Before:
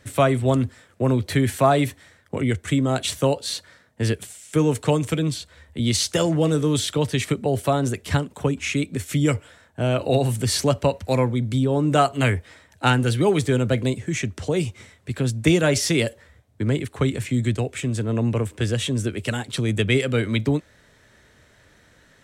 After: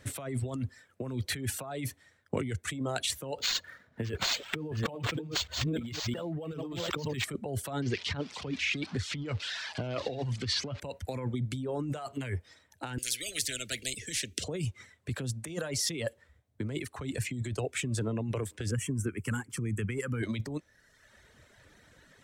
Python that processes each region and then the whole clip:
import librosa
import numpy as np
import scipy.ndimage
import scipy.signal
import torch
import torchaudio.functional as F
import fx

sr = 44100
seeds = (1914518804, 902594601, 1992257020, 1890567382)

y = fx.chain(x, sr, fx.reverse_delay(ms=524, wet_db=-4),
    fx.over_compress(threshold_db=-30.0, ratio=-1.0),
    fx.resample_linear(factor=4), at=(3.38, 7.24))
y = fx.chain(y, sr, fx.crossing_spikes(level_db=-15.5),
    fx.lowpass(hz=4400.0, slope=24), at=(7.82, 10.8))
y = fx.chain(y, sr, fx.cheby1_bandstop(low_hz=280.0, high_hz=3000.0, order=2),
    fx.low_shelf(hz=150.0, db=11.5),
    fx.spectral_comp(ratio=10.0), at=(12.98, 14.44))
y = fx.chain(y, sr, fx.peak_eq(hz=2500.0, db=-4.0, octaves=1.6),
    fx.fixed_phaser(hz=1600.0, stages=4), at=(18.71, 20.23))
y = fx.dereverb_blind(y, sr, rt60_s=0.95)
y = fx.over_compress(y, sr, threshold_db=-27.0, ratio=-1.0)
y = y * 10.0 ** (-6.0 / 20.0)